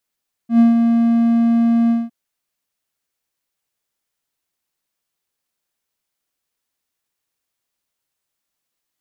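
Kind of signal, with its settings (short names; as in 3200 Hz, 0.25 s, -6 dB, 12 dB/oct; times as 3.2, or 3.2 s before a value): ADSR triangle 232 Hz, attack 0.103 s, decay 0.148 s, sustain -5 dB, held 1.41 s, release 0.198 s -4.5 dBFS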